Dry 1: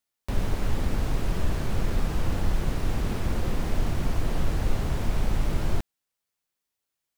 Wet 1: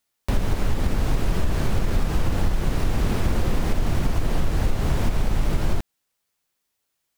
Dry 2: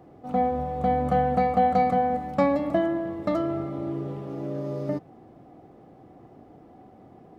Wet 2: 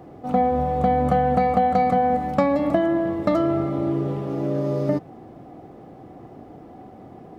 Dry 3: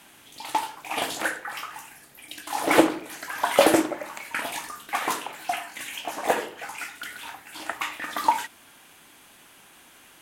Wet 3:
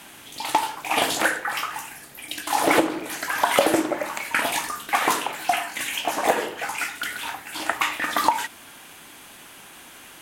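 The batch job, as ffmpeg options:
-af "acompressor=threshold=-23dB:ratio=6,volume=7.5dB"

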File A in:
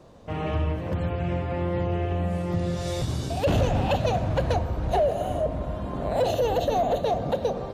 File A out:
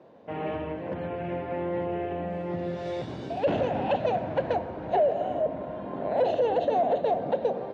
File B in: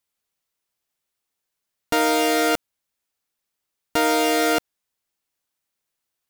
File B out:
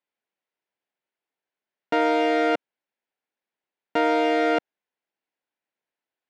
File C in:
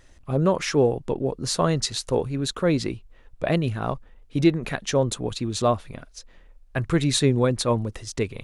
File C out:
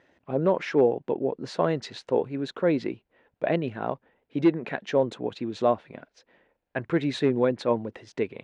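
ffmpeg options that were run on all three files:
-af "equalizer=f=1.2k:w=5.2:g=-8.5,volume=11dB,asoftclip=hard,volume=-11dB,highpass=240,lowpass=2.2k"

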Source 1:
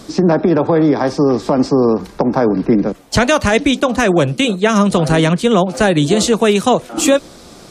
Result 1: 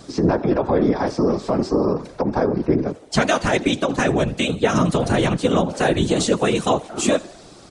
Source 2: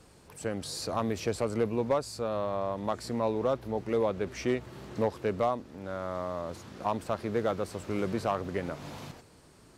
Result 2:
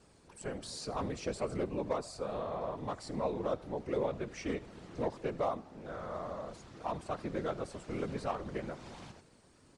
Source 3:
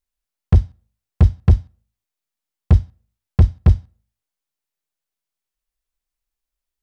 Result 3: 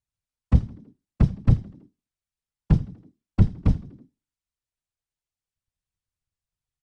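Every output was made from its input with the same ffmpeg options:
-filter_complex "[0:a]asplit=2[a][b];[b]asplit=4[c][d][e][f];[c]adelay=81,afreqshift=40,volume=-21dB[g];[d]adelay=162,afreqshift=80,volume=-26.5dB[h];[e]adelay=243,afreqshift=120,volume=-32dB[i];[f]adelay=324,afreqshift=160,volume=-37.5dB[j];[g][h][i][j]amix=inputs=4:normalize=0[k];[a][k]amix=inputs=2:normalize=0,aresample=22050,aresample=44100,afftfilt=real='hypot(re,im)*cos(2*PI*random(0))':imag='hypot(re,im)*sin(2*PI*random(1))':win_size=512:overlap=0.75"

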